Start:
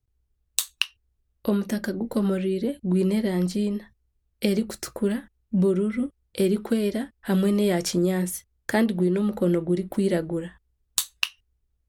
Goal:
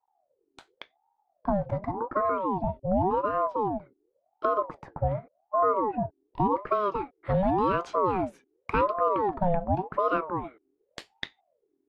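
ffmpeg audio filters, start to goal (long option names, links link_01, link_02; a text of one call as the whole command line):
ffmpeg -i in.wav -af "asetnsamples=nb_out_samples=441:pad=0,asendcmd='6.56 lowpass f 1800',lowpass=1000,aeval=exprs='val(0)*sin(2*PI*600*n/s+600*0.45/0.89*sin(2*PI*0.89*n/s))':channel_layout=same" out.wav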